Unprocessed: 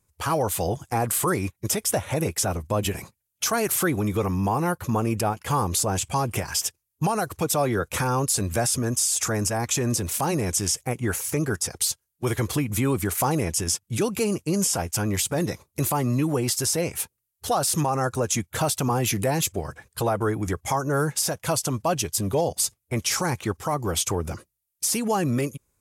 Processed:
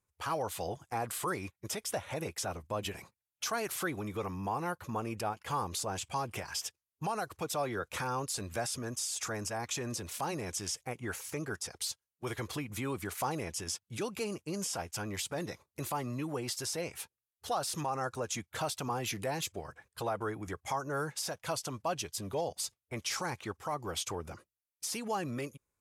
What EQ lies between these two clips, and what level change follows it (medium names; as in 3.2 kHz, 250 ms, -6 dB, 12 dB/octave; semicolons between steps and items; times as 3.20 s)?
bass shelf 460 Hz -9.5 dB; treble shelf 3.2 kHz -10 dB; dynamic bell 4.2 kHz, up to +5 dB, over -48 dBFS, Q 1; -6.5 dB